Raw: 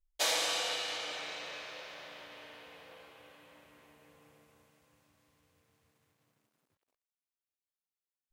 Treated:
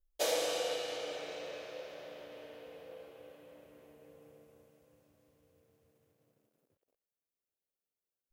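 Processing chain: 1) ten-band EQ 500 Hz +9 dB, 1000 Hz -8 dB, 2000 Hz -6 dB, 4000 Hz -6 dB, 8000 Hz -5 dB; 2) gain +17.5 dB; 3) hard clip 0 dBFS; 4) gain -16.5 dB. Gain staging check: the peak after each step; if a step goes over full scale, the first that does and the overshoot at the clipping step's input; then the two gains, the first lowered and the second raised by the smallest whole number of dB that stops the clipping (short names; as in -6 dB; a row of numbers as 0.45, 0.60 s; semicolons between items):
-20.5, -3.0, -3.0, -19.5 dBFS; no overload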